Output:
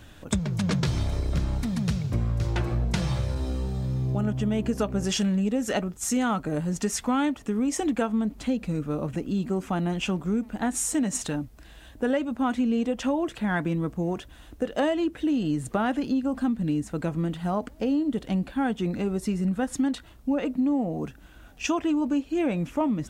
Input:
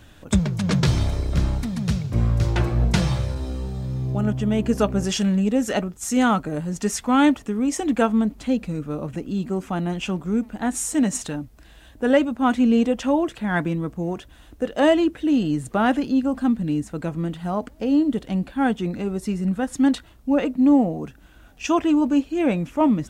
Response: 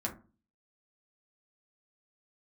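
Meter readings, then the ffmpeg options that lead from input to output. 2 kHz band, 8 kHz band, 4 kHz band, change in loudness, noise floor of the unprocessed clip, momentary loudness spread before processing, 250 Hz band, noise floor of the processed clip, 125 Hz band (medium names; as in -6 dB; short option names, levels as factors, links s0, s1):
-5.0 dB, -1.5 dB, -3.5 dB, -5.0 dB, -49 dBFS, 10 LU, -5.0 dB, -49 dBFS, -4.0 dB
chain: -af "acompressor=threshold=0.0794:ratio=6"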